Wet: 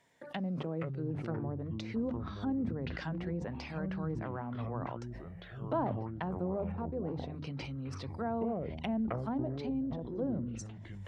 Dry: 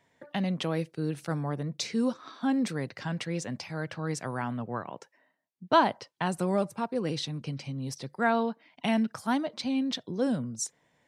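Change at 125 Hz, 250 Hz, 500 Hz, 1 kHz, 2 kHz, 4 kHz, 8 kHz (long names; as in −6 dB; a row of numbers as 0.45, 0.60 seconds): −2.0 dB, −5.5 dB, −6.0 dB, −10.5 dB, −11.5 dB, −14.5 dB, below −15 dB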